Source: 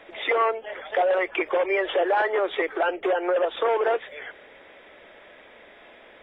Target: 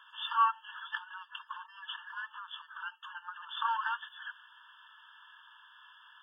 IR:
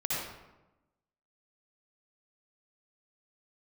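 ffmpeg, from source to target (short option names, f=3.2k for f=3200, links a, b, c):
-filter_complex "[0:a]asettb=1/sr,asplit=3[a][b][c];[a]atrim=end=0.984[d];[b]atrim=start=0.98:end=3.49,asetpts=PTS-STARTPTS,afade=t=in:d=0.004:c=qsin,afade=t=out:st=2.506:d=0.004:c=qsin,acompressor=threshold=-30dB:ratio=6[e];[c]atrim=start=3.486[f];[d][e]acrossfade=d=0.004:c1=hsin:c2=qsin[g];[g][f]acrossfade=d=0.004:c1=qsin:c2=hsin,afftfilt=real='re*eq(mod(floor(b*sr/1024/900),2),1)':imag='im*eq(mod(floor(b*sr/1024/900),2),1)':win_size=1024:overlap=0.75,volume=-1.5dB"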